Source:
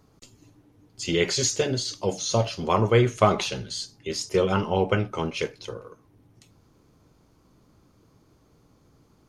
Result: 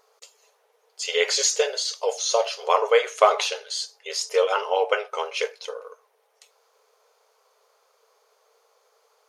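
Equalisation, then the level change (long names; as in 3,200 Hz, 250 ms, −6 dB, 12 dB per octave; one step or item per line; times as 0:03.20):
linear-phase brick-wall high-pass 410 Hz
+3.5 dB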